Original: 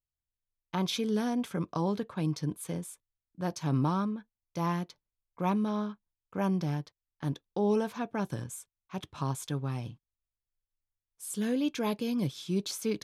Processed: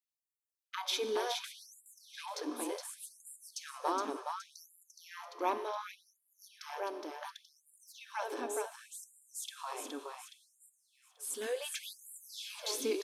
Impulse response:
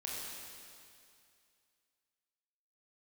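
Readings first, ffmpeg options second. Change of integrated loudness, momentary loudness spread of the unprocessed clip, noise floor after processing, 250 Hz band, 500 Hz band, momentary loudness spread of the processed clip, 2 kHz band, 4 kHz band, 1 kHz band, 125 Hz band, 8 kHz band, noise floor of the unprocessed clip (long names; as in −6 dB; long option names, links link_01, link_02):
−7.0 dB, 13 LU, below −85 dBFS, −16.5 dB, −4.5 dB, 18 LU, −1.0 dB, +0.5 dB, −2.0 dB, below −40 dB, +1.0 dB, below −85 dBFS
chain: -filter_complex "[0:a]aecho=1:1:418|836|1254|1672|2090:0.596|0.262|0.115|0.0507|0.0223,asplit=2[link_01][link_02];[1:a]atrim=start_sample=2205[link_03];[link_02][link_03]afir=irnorm=-1:irlink=0,volume=-10dB[link_04];[link_01][link_04]amix=inputs=2:normalize=0,afftfilt=real='re*gte(b*sr/1024,240*pow(7200/240,0.5+0.5*sin(2*PI*0.68*pts/sr)))':imag='im*gte(b*sr/1024,240*pow(7200/240,0.5+0.5*sin(2*PI*0.68*pts/sr)))':win_size=1024:overlap=0.75,volume=-2dB"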